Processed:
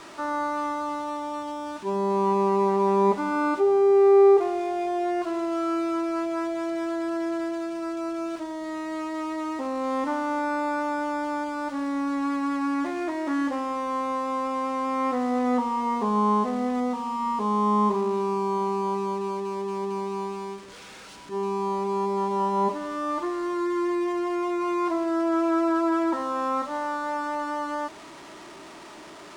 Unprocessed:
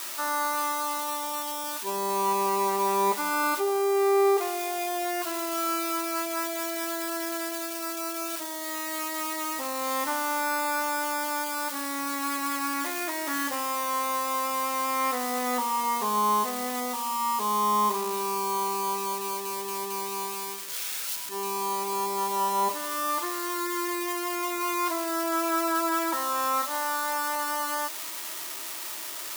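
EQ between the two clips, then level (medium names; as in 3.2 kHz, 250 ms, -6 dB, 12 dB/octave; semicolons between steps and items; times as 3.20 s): Savitzky-Golay filter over 9 samples; tilt EQ -5 dB/octave; 0.0 dB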